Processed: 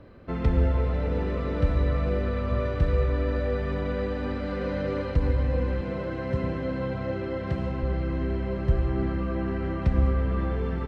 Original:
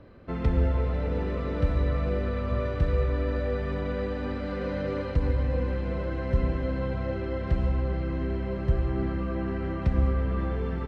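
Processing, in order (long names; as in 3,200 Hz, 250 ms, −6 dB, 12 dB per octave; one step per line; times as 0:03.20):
0:05.81–0:07.83: high-pass filter 85 Hz 24 dB per octave
level +1.5 dB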